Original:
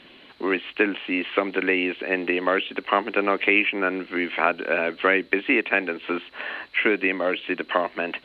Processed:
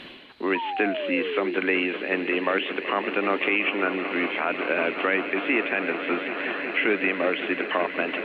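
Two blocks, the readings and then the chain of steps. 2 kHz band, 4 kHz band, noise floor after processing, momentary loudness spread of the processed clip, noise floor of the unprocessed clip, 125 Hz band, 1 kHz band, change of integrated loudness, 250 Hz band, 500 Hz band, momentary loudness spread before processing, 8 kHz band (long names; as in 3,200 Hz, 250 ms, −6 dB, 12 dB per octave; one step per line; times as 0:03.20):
−1.5 dB, −1.0 dB, −35 dBFS, 4 LU, −50 dBFS, −1.0 dB, −1.5 dB, −1.5 dB, −1.0 dB, −1.0 dB, 7 LU, can't be measured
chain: echo that builds up and dies away 188 ms, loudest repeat 5, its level −16 dB
sound drawn into the spectrogram fall, 0:00.55–0:01.55, 340–980 Hz −29 dBFS
brickwall limiter −10.5 dBFS, peak gain reduction 8 dB
reversed playback
upward compression, threshold −30 dBFS
reversed playback
level −1 dB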